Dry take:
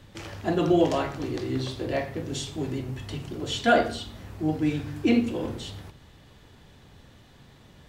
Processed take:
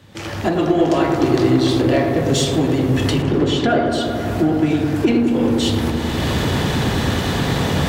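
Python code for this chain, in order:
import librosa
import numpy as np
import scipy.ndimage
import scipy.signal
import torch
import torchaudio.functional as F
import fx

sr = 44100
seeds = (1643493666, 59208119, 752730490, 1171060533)

p1 = fx.recorder_agc(x, sr, target_db=-11.0, rise_db_per_s=28.0, max_gain_db=30)
p2 = scipy.signal.sosfilt(scipy.signal.butter(2, 70.0, 'highpass', fs=sr, output='sos'), p1)
p3 = np.clip(p2, -10.0 ** (-24.5 / 20.0), 10.0 ** (-24.5 / 20.0))
p4 = p2 + (p3 * librosa.db_to_amplitude(-5.0))
p5 = fx.lowpass(p4, sr, hz=2100.0, slope=6, at=(3.22, 3.92))
y = fx.echo_wet_lowpass(p5, sr, ms=105, feedback_pct=84, hz=1500.0, wet_db=-6.0)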